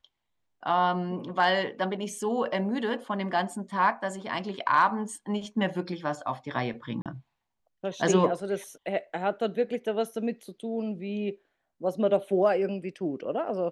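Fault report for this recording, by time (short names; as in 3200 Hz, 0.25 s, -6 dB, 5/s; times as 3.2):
7.02–7.06 gap 37 ms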